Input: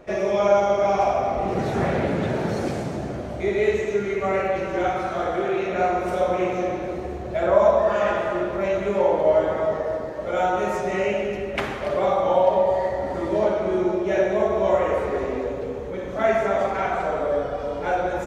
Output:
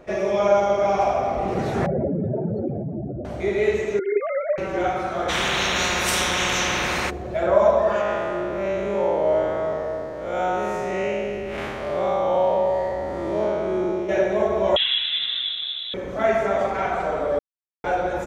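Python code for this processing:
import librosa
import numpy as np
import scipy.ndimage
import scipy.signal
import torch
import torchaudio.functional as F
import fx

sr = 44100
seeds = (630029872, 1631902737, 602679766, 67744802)

y = fx.spec_expand(x, sr, power=2.6, at=(1.86, 3.25))
y = fx.sine_speech(y, sr, at=(3.99, 4.58))
y = fx.spectral_comp(y, sr, ratio=10.0, at=(5.28, 7.09), fade=0.02)
y = fx.spec_blur(y, sr, span_ms=140.0, at=(8.01, 14.09))
y = fx.freq_invert(y, sr, carrier_hz=3900, at=(14.76, 15.94))
y = fx.edit(y, sr, fx.silence(start_s=17.39, length_s=0.45), tone=tone)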